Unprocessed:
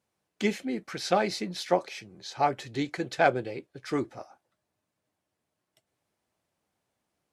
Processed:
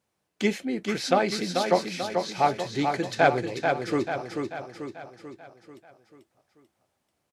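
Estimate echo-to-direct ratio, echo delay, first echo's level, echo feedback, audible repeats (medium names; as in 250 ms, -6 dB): -3.5 dB, 439 ms, -5.0 dB, 51%, 6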